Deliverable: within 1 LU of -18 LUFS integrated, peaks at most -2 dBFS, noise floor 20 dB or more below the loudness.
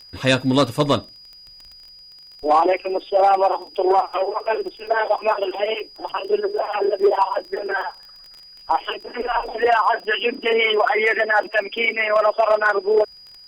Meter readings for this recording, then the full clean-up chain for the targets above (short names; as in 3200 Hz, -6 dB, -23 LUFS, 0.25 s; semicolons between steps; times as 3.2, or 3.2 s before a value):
ticks 19/s; steady tone 4900 Hz; tone level -42 dBFS; loudness -20.0 LUFS; peak -7.0 dBFS; loudness target -18.0 LUFS
-> de-click; notch 4900 Hz, Q 30; gain +2 dB